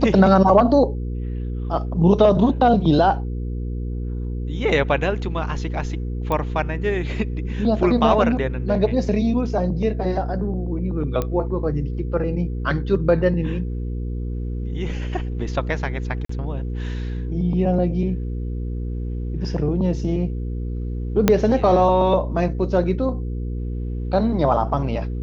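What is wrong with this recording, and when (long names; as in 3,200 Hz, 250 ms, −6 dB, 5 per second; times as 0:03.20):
mains hum 60 Hz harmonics 8 −26 dBFS
0:06.32: click −12 dBFS
0:11.22: click −11 dBFS
0:16.25–0:16.29: drop-out 44 ms
0:21.28: click −1 dBFS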